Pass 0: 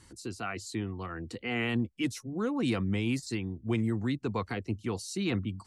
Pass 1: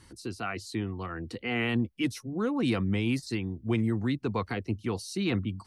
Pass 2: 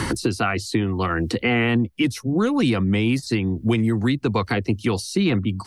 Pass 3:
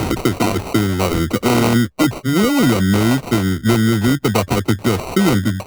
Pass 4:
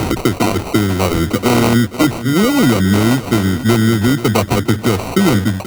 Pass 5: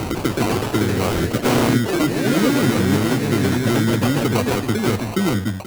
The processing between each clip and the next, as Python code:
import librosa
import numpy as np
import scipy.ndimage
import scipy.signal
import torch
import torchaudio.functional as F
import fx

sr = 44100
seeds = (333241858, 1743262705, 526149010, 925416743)

y1 = fx.peak_eq(x, sr, hz=7300.0, db=-9.0, octaves=0.31)
y1 = y1 * 10.0 ** (2.0 / 20.0)
y2 = fx.band_squash(y1, sr, depth_pct=100)
y2 = y2 * 10.0 ** (8.0 / 20.0)
y3 = fx.sample_hold(y2, sr, seeds[0], rate_hz=1700.0, jitter_pct=0)
y3 = y3 * 10.0 ** (5.5 / 20.0)
y4 = fx.echo_feedback(y3, sr, ms=483, feedback_pct=43, wet_db=-14)
y4 = y4 * 10.0 ** (2.0 / 20.0)
y5 = fx.echo_pitch(y4, sr, ms=148, semitones=2, count=3, db_per_echo=-3.0)
y5 = y5 * 10.0 ** (-7.0 / 20.0)